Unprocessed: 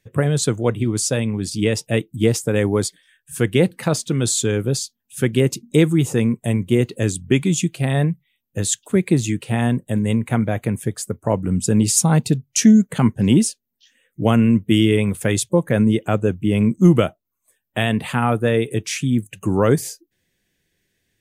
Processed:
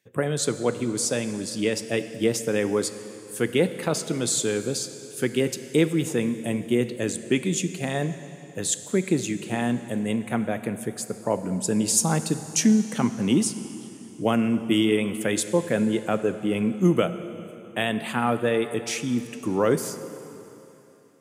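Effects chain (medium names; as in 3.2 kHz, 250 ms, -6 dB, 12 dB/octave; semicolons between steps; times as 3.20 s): high-pass 210 Hz 12 dB/octave; plate-style reverb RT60 3.3 s, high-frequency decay 0.9×, DRR 10.5 dB; trim -4 dB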